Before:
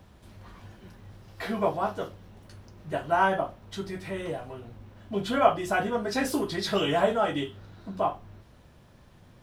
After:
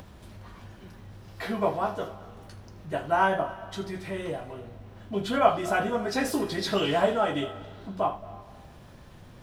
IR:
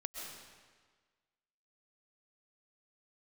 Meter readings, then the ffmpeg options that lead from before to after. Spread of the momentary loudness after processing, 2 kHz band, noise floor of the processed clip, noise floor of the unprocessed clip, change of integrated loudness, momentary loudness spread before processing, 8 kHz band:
23 LU, 0.0 dB, −49 dBFS, −55 dBFS, 0.0 dB, 17 LU, 0.0 dB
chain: -filter_complex "[0:a]acompressor=mode=upward:threshold=-41dB:ratio=2.5,asplit=2[link_01][link_02];[1:a]atrim=start_sample=2205,adelay=80[link_03];[link_02][link_03]afir=irnorm=-1:irlink=0,volume=-12.5dB[link_04];[link_01][link_04]amix=inputs=2:normalize=0"

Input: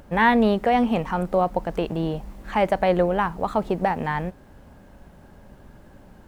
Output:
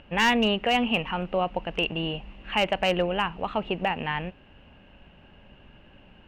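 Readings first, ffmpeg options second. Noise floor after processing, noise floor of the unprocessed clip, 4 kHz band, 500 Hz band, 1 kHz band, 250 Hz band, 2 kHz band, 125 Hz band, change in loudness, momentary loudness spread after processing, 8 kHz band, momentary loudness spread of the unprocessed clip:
−54 dBFS, −49 dBFS, +10.0 dB, −5.5 dB, −5.0 dB, −5.5 dB, 0.0 dB, −5.5 dB, −3.5 dB, 9 LU, can't be measured, 9 LU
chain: -af "lowpass=frequency=2800:width_type=q:width=13,volume=9.5dB,asoftclip=hard,volume=-9.5dB,volume=-5.5dB"

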